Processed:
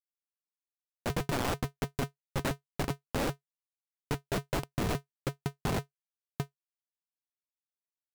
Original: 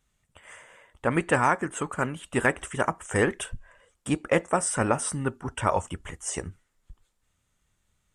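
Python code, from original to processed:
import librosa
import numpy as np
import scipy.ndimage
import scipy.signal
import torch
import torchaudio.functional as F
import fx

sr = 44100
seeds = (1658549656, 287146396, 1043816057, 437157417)

y = fx.env_lowpass(x, sr, base_hz=620.0, full_db=-19.5)
y = fx.high_shelf(y, sr, hz=2800.0, db=-2.5)
y = fx.schmitt(y, sr, flips_db=-22.0)
y = y * np.sign(np.sin(2.0 * np.pi * 140.0 * np.arange(len(y)) / sr))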